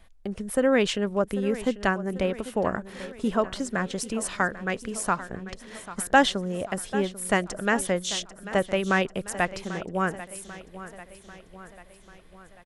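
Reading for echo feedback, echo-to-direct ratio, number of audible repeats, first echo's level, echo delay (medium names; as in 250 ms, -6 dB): 56%, -13.5 dB, 4, -15.0 dB, 792 ms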